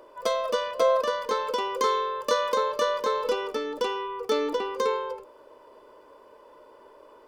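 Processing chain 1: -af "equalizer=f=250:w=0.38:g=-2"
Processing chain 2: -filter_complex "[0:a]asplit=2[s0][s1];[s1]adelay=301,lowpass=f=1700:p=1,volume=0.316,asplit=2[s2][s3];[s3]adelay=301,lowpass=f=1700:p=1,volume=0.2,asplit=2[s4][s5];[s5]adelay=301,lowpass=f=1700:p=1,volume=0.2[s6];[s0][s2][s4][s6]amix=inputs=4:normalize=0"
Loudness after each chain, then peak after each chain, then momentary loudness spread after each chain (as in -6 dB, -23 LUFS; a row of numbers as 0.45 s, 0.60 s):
-28.0 LUFS, -27.0 LUFS; -12.5 dBFS, -11.5 dBFS; 6 LU, 7 LU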